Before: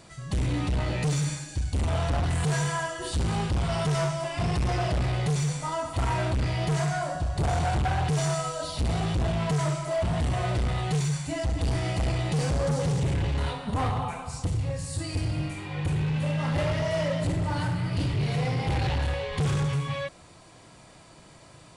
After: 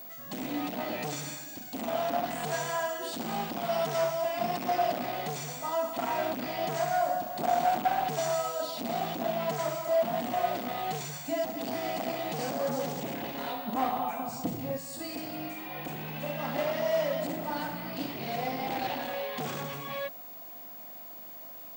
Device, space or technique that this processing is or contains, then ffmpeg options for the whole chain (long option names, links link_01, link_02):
old television with a line whistle: -filter_complex "[0:a]highpass=frequency=220:width=0.5412,highpass=frequency=220:width=1.3066,equalizer=frequency=240:width_type=q:width=4:gain=8,equalizer=frequency=400:width_type=q:width=4:gain=-4,equalizer=frequency=710:width_type=q:width=4:gain=9,lowpass=frequency=8600:width=0.5412,lowpass=frequency=8600:width=1.3066,aeval=exprs='val(0)+0.0112*sin(2*PI*15625*n/s)':channel_layout=same,asettb=1/sr,asplit=3[link_01][link_02][link_03];[link_01]atrim=end=14.194[link_04];[link_02]atrim=start=14.19:end=14.78,asetpts=PTS-STARTPTS,afade=type=in:duration=0.004:curve=qsin,afade=type=out:start_time=0.586:duration=0.004:curve=qsin,lowshelf=frequency=420:gain=11[link_05];[link_03]atrim=start=14.776[link_06];[link_04][link_05]acrossfade=duration=0.004:curve1=hsin:curve2=qsin[link_07];[link_07][link_06]acrossfade=duration=0.004:curve1=qsin:curve2=hsin,volume=-3.5dB"